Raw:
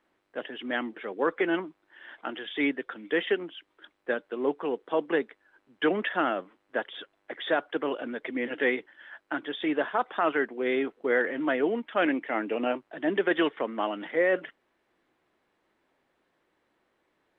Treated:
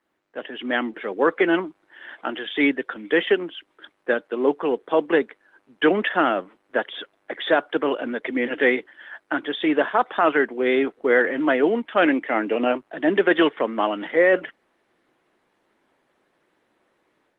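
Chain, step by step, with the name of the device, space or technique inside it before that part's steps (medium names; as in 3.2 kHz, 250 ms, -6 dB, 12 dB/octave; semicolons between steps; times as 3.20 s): video call (high-pass 120 Hz 12 dB/octave; level rider gain up to 7.5 dB; Opus 24 kbps 48 kHz)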